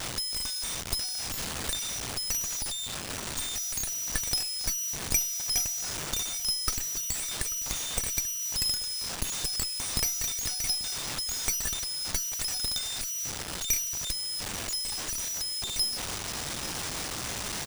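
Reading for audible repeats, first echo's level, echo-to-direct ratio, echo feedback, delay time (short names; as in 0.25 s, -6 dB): 2, -17.0 dB, -17.0 dB, 21%, 0.838 s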